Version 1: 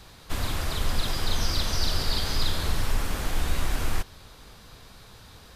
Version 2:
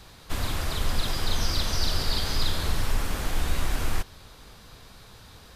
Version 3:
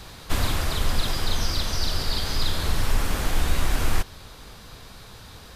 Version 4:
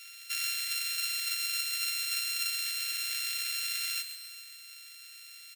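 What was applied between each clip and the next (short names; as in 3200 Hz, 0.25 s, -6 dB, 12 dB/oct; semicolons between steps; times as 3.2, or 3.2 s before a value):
nothing audible
vocal rider within 5 dB 0.5 s; gain +2.5 dB
sample sorter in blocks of 32 samples; steep high-pass 1900 Hz 36 dB/oct; feedback echo 0.134 s, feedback 52%, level -10 dB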